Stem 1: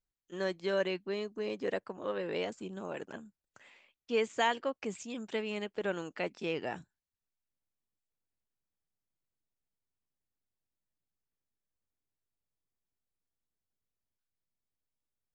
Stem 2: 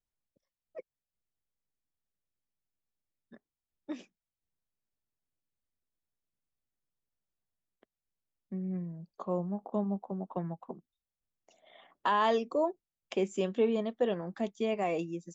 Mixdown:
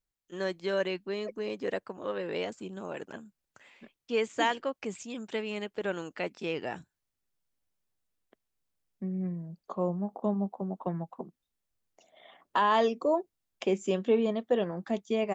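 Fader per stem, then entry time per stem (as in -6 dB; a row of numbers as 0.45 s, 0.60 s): +1.5 dB, +2.5 dB; 0.00 s, 0.50 s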